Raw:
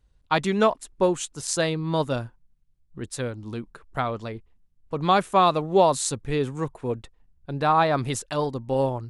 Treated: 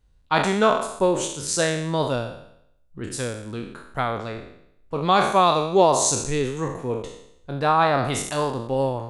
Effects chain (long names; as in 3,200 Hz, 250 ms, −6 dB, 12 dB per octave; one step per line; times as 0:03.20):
peak hold with a decay on every bin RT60 0.73 s
0:05.14–0:07.52: parametric band 6,300 Hz +9 dB 0.32 octaves